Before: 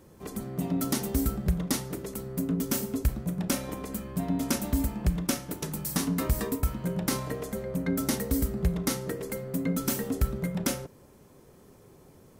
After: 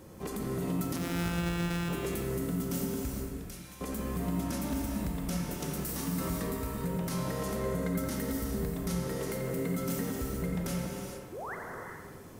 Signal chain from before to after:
0:00.96–0:01.89: samples sorted by size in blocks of 256 samples
downward compressor, threshold −34 dBFS, peak gain reduction 14 dB
brickwall limiter −30.5 dBFS, peak gain reduction 9.5 dB
0:03.24–0:03.81: guitar amp tone stack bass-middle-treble 5-5-5
0:11.32–0:11.55: sound drawn into the spectrogram rise 320–2,200 Hz −44 dBFS
on a send: delay with a band-pass on its return 87 ms, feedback 61%, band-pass 1,400 Hz, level −6 dB
on the sum: reverb whose tail is shaped and stops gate 470 ms flat, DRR 0.5 dB
level +3.5 dB

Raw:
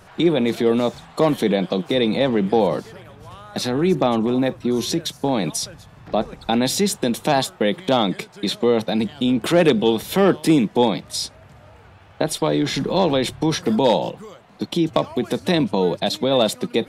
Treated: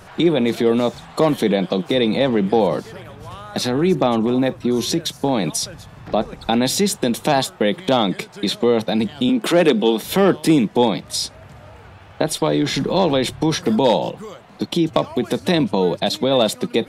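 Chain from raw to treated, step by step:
0:09.29–0:10.04: Butterworth high-pass 170 Hz
in parallel at −2.5 dB: downward compressor, threshold −29 dBFS, peak gain reduction 17 dB

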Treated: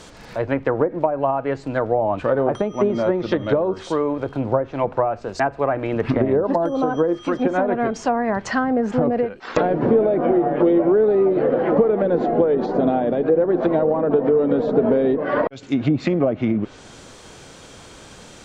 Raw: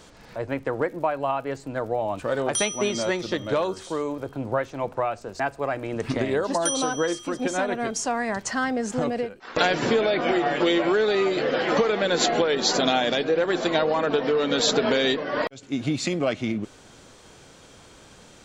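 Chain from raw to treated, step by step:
treble cut that deepens with the level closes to 590 Hz, closed at −19.5 dBFS
level +7 dB

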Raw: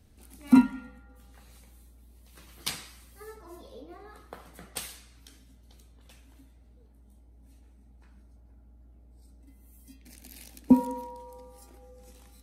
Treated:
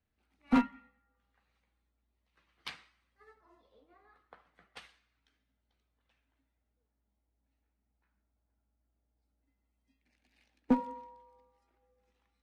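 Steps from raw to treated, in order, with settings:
low-pass filter 2,100 Hz 12 dB per octave
tilt shelving filter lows −8 dB, about 810 Hz
asymmetric clip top −22.5 dBFS
expander for the loud parts 1.5 to 1, over −57 dBFS

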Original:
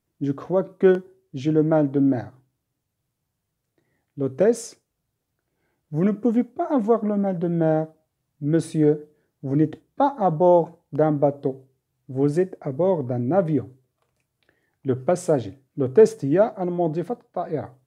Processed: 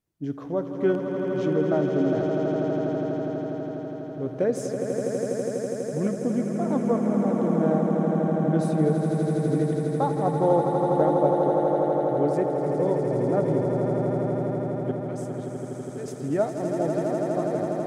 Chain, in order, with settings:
0:14.91–0:16.08: guitar amp tone stack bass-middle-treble 5-5-5
echo that builds up and dies away 82 ms, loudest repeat 8, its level −7.5 dB
level −6 dB

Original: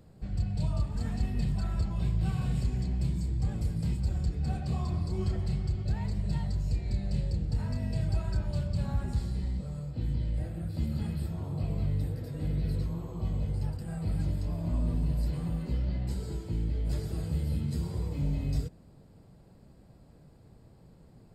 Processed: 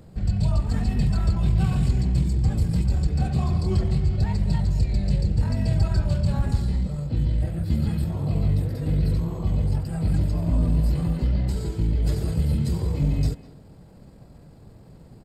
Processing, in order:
tempo change 1.4×
far-end echo of a speakerphone 200 ms, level −15 dB
level +8.5 dB

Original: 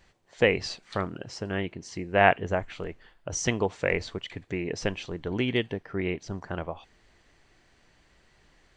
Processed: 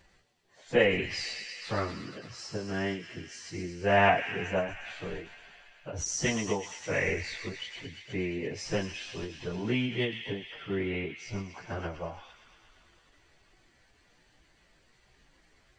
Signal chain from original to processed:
delay with a high-pass on its return 64 ms, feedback 80%, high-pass 2,100 Hz, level −7 dB
time stretch by phase vocoder 1.8×
every ending faded ahead of time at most 120 dB per second

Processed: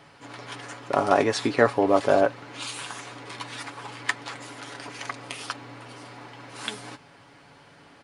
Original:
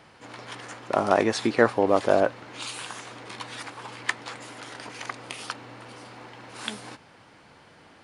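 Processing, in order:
comb filter 7.1 ms, depth 49%

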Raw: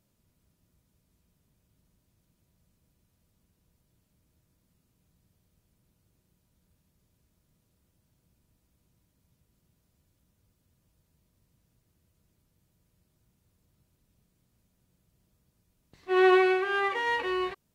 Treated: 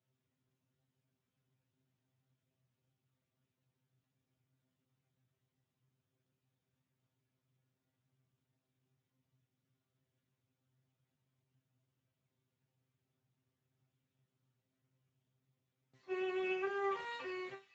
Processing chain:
brickwall limiter −17.5 dBFS, peak gain reduction 8 dB
high-pass filter 73 Hz 24 dB per octave
low-shelf EQ 450 Hz −3 dB
tuned comb filter 130 Hz, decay 0.24 s, harmonics all, mix 100%
delay with a high-pass on its return 423 ms, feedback 61%, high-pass 3,600 Hz, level −14 dB
level +1 dB
Speex 13 kbit/s 16,000 Hz

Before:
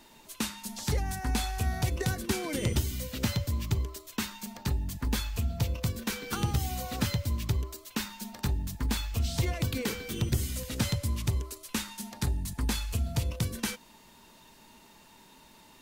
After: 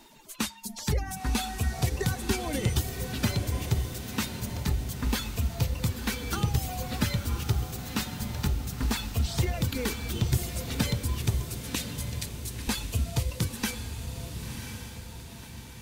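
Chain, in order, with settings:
spectral magnitudes quantised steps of 15 dB
reverb reduction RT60 0.86 s
0:11.75–0:12.68: inverse Chebyshev high-pass filter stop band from 1,000 Hz, stop band 40 dB
on a send: feedback delay with all-pass diffusion 1,034 ms, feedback 51%, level −7 dB
on the sum: level +2.5 dB

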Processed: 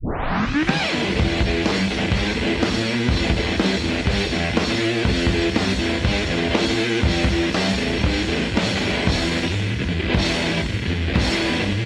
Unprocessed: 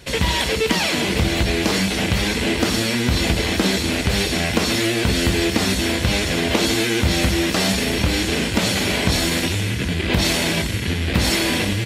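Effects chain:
turntable start at the beginning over 0.87 s
high-frequency loss of the air 110 metres

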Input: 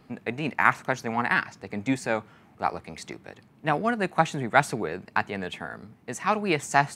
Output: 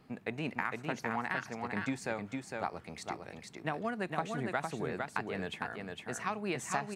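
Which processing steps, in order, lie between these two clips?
downward compressor 12 to 1, threshold −25 dBFS, peak gain reduction 13.5 dB
on a send: single-tap delay 457 ms −4 dB
on the sum: level −5.5 dB

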